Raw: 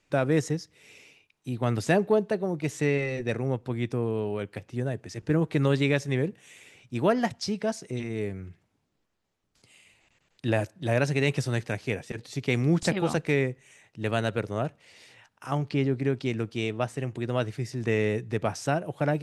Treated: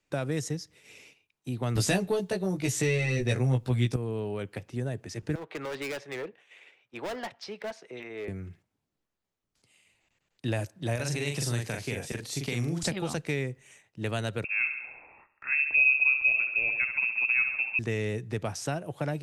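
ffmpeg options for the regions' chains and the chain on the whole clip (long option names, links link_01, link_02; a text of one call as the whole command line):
ffmpeg -i in.wav -filter_complex "[0:a]asettb=1/sr,asplit=3[link_01][link_02][link_03];[link_01]atrim=end=1.754[link_04];[link_02]atrim=start=1.75:end=3.96,asetpts=PTS-STARTPTS,afade=type=in:duration=0.004:curve=qsin,afade=type=out:start_time=2.206:duration=0.004:curve=qsin,acontrast=47,asplit=2[link_05][link_06];[link_06]adelay=16,volume=-2dB[link_07];[link_05][link_07]amix=inputs=2:normalize=0,atrim=end_sample=97461[link_08];[link_03]atrim=start=3.956[link_09];[link_04][link_08]acrossfade=duration=0.004:curve1=hsin:curve2=qsin[link_10];[link_10][link_09]acrossfade=duration=0.004:curve1=qsin:curve2=hsin,asettb=1/sr,asplit=3[link_11][link_12][link_13];[link_11]atrim=end=5.354[link_14];[link_12]atrim=start=5.35:end=8.28,asetpts=PTS-STARTPTS,afade=type=in:duration=0.004:curve=qsin,afade=type=out:start_time=2.926:duration=0.004:curve=qsin,acrossover=split=400 3800:gain=0.0794 1 0.0794[link_15][link_16][link_17];[link_15][link_16][link_17]amix=inputs=3:normalize=0,volume=31dB,asoftclip=hard,volume=-31dB[link_18];[link_13]atrim=start=8.276[link_19];[link_14][link_18]acrossfade=duration=0.004:curve1=hsin:curve2=qsin[link_20];[link_20][link_19]acrossfade=duration=0.004:curve1=qsin:curve2=hsin,asettb=1/sr,asplit=3[link_21][link_22][link_23];[link_21]atrim=end=10.954[link_24];[link_22]atrim=start=10.95:end=12.83,asetpts=PTS-STARTPTS,afade=type=in:duration=0.004:curve=qsin,afade=type=out:start_time=1.876:duration=0.004:curve=qsin,highshelf=frequency=5300:gain=9.5,acompressor=threshold=-27dB:ratio=2.5:attack=3.2:release=140:knee=1:detection=peak,asplit=2[link_25][link_26];[link_26]adelay=42,volume=-3.5dB[link_27];[link_25][link_27]amix=inputs=2:normalize=0,atrim=end_sample=82908[link_28];[link_23]atrim=start=12.826[link_29];[link_24][link_28]acrossfade=duration=0.004:curve1=hsin:curve2=qsin[link_30];[link_30][link_29]acrossfade=duration=0.004:curve1=qsin:curve2=hsin,asettb=1/sr,asplit=3[link_31][link_32][link_33];[link_31]atrim=end=14.444[link_34];[link_32]atrim=start=14.44:end=17.79,asetpts=PTS-STARTPTS,afade=type=in:duration=0.004:curve=qsin,afade=type=out:start_time=3.346:duration=0.004:curve=qsin,equalizer=frequency=260:width=2.9:gain=13.5,aecho=1:1:68|136|204|272|340|408|476:0.355|0.199|0.111|0.0623|0.0349|0.0195|0.0109,atrim=end_sample=147735,lowpass=frequency=2400:width_type=q:width=0.5098,lowpass=frequency=2400:width_type=q:width=0.6013,lowpass=frequency=2400:width_type=q:width=0.9,lowpass=frequency=2400:width_type=q:width=2.563,afreqshift=-2800[link_35];[link_33]atrim=start=17.786[link_36];[link_34][link_35]acrossfade=duration=0.004:curve1=hsin:curve2=qsin[link_37];[link_37][link_36]acrossfade=duration=0.004:curve1=qsin:curve2=hsin,agate=range=-8dB:threshold=-54dB:ratio=16:detection=peak,highshelf=frequency=9900:gain=4.5,acrossover=split=120|3000[link_38][link_39][link_40];[link_39]acompressor=threshold=-31dB:ratio=3[link_41];[link_38][link_41][link_40]amix=inputs=3:normalize=0" out.wav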